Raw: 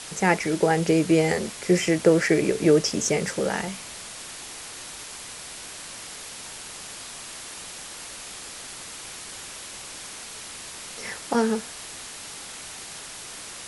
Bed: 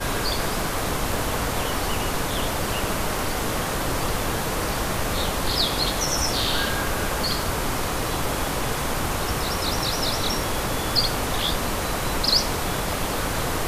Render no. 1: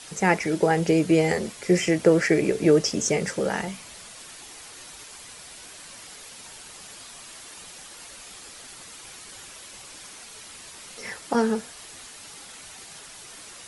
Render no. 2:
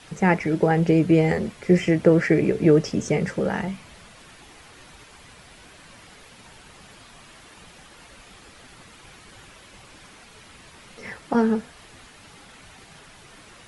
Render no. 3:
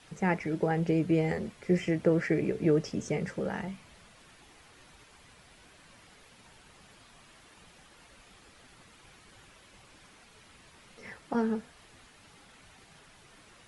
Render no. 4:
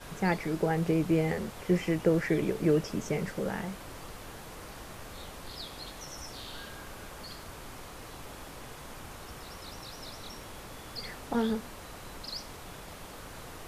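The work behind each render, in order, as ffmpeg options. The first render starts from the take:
ffmpeg -i in.wav -af "afftdn=noise_reduction=7:noise_floor=-40" out.wav
ffmpeg -i in.wav -af "bass=frequency=250:gain=7,treble=frequency=4000:gain=-12" out.wav
ffmpeg -i in.wav -af "volume=-9dB" out.wav
ffmpeg -i in.wav -i bed.wav -filter_complex "[1:a]volume=-20dB[link_01];[0:a][link_01]amix=inputs=2:normalize=0" out.wav

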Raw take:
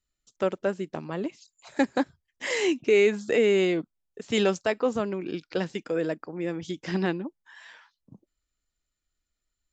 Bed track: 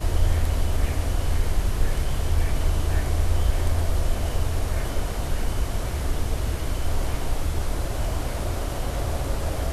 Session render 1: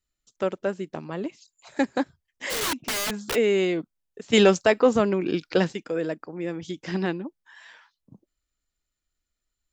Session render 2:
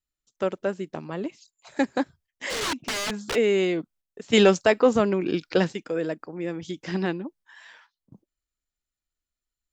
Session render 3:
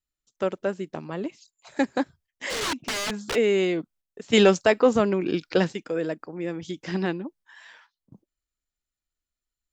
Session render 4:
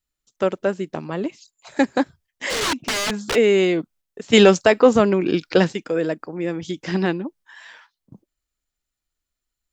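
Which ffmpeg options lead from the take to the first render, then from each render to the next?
ffmpeg -i in.wav -filter_complex "[0:a]asplit=3[link_01][link_02][link_03];[link_01]afade=type=out:start_time=2.49:duration=0.02[link_04];[link_02]aeval=exprs='(mod(12.6*val(0)+1,2)-1)/12.6':channel_layout=same,afade=type=in:start_time=2.49:duration=0.02,afade=type=out:start_time=3.34:duration=0.02[link_05];[link_03]afade=type=in:start_time=3.34:duration=0.02[link_06];[link_04][link_05][link_06]amix=inputs=3:normalize=0,asettb=1/sr,asplit=3[link_07][link_08][link_09];[link_07]atrim=end=4.334[link_10];[link_08]atrim=start=4.33:end=5.73,asetpts=PTS-STARTPTS,afade=type=in:duration=0.004:curve=qsin,afade=type=out:start_time=1.396:duration=0.004:curve=qsin,acontrast=84[link_11];[link_09]atrim=start=5.726[link_12];[link_10][link_11]acrossfade=duration=0.004:curve1=hsin:curve2=qsin[link_13];[link_13][link_12]acrossfade=duration=0.004:curve1=qsin:curve2=hsin" out.wav
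ffmpeg -i in.wav -filter_complex "[0:a]acrossover=split=8300[link_01][link_02];[link_02]acompressor=threshold=-45dB:ratio=4:attack=1:release=60[link_03];[link_01][link_03]amix=inputs=2:normalize=0,agate=range=-7dB:threshold=-55dB:ratio=16:detection=peak" out.wav
ffmpeg -i in.wav -af anull out.wav
ffmpeg -i in.wav -af "volume=5.5dB,alimiter=limit=-2dB:level=0:latency=1" out.wav

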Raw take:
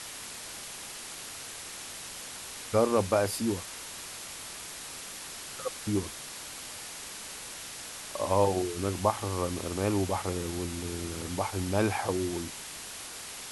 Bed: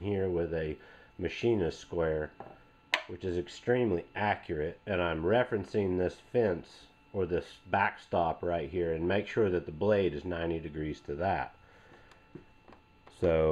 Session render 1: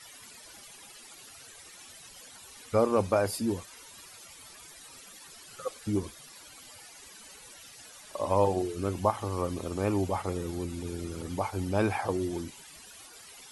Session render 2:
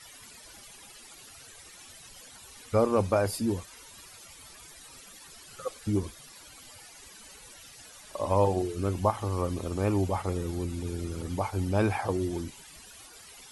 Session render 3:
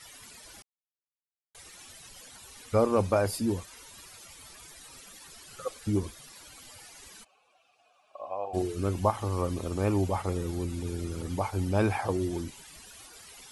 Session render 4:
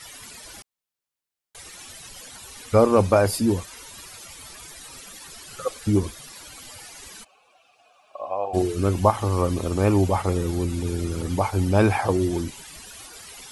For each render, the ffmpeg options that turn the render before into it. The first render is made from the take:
ffmpeg -i in.wav -af "afftdn=noise_reduction=15:noise_floor=-42" out.wav
ffmpeg -i in.wav -af "lowshelf=frequency=92:gain=9" out.wav
ffmpeg -i in.wav -filter_complex "[0:a]asettb=1/sr,asplit=3[link_01][link_02][link_03];[link_01]atrim=end=0.624[link_04];[link_02]atrim=start=0.62:end=1.55,asetpts=PTS-STARTPTS,afade=type=in:duration=0.004:curve=qsin,afade=type=out:start_time=0.926:duration=0.004:curve=qsin,acrusher=bits=3:mix=0:aa=0.5[link_05];[link_03]atrim=start=1.546[link_06];[link_04][link_05]acrossfade=duration=0.004:curve1=hsin:curve2=qsin[link_07];[link_07][link_06]acrossfade=duration=0.004:curve1=qsin:curve2=hsin,asplit=3[link_08][link_09][link_10];[link_08]afade=type=out:start_time=7.23:duration=0.02[link_11];[link_09]asplit=3[link_12][link_13][link_14];[link_12]bandpass=frequency=730:width_type=q:width=8,volume=0dB[link_15];[link_13]bandpass=frequency=1090:width_type=q:width=8,volume=-6dB[link_16];[link_14]bandpass=frequency=2440:width_type=q:width=8,volume=-9dB[link_17];[link_15][link_16][link_17]amix=inputs=3:normalize=0,afade=type=in:start_time=7.23:duration=0.02,afade=type=out:start_time=8.53:duration=0.02[link_18];[link_10]afade=type=in:start_time=8.53:duration=0.02[link_19];[link_11][link_18][link_19]amix=inputs=3:normalize=0" out.wav
ffmpeg -i in.wav -af "volume=7.5dB" out.wav

